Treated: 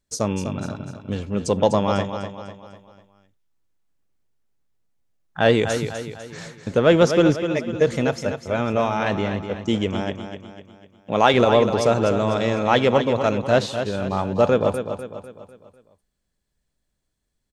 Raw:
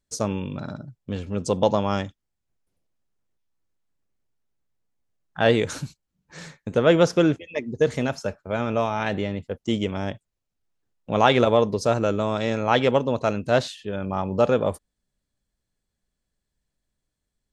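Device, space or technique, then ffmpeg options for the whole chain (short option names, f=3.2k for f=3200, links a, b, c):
parallel distortion: -filter_complex "[0:a]asettb=1/sr,asplit=3[a][b][c];[a]atrim=end=10.014[d];[b]atrim=start=10.01:end=11.34,asetpts=PTS-STARTPTS,afade=t=in:d=0.004:c=qsin,afade=t=out:st=1.326:d=0.004:c=qsin,highpass=f=170:p=1[e];[c]atrim=start=11.336[f];[d][e]acrossfade=d=0.004:c1=hsin:c2=qsin[g];[g][f]acrossfade=d=0.004:c1=qsin:c2=hsin,aecho=1:1:249|498|747|996|1245:0.355|0.16|0.0718|0.0323|0.0145,asplit=2[h][i];[i]asoftclip=type=hard:threshold=-17.5dB,volume=-14dB[j];[h][j]amix=inputs=2:normalize=0,volume=1dB"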